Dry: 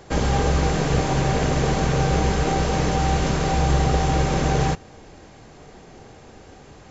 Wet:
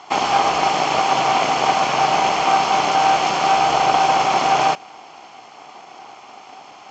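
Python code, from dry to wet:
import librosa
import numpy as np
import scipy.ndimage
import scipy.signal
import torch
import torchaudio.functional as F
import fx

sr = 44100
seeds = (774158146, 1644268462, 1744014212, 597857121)

y = fx.lower_of_two(x, sr, delay_ms=0.93)
y = fx.cabinet(y, sr, low_hz=500.0, low_slope=12, high_hz=6100.0, hz=(740.0, 1900.0, 2700.0, 3800.0), db=(8, -6, 7, -4))
y = y * 10.0 ** (8.0 / 20.0)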